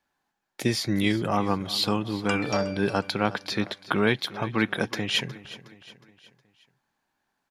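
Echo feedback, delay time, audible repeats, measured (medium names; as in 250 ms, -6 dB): 48%, 364 ms, 3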